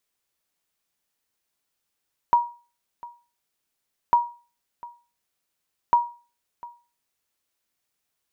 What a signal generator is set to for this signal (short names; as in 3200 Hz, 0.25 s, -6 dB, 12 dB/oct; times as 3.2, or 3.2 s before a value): sonar ping 954 Hz, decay 0.35 s, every 1.80 s, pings 3, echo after 0.70 s, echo -21.5 dB -10 dBFS